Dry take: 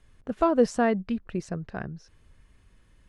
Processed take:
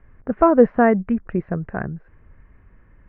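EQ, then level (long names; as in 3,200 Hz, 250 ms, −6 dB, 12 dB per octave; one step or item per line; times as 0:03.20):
Butterworth low-pass 2,100 Hz 36 dB per octave
+8.0 dB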